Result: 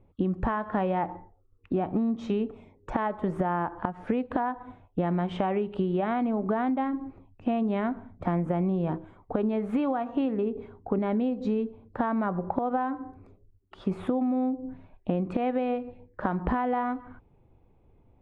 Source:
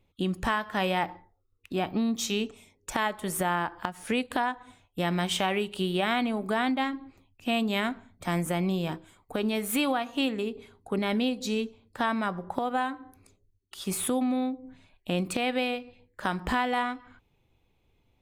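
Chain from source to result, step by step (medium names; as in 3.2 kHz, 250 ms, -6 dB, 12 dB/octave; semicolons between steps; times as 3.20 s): low-pass 1 kHz 12 dB/octave; compression, threshold -33 dBFS, peak gain reduction 9.5 dB; trim +9 dB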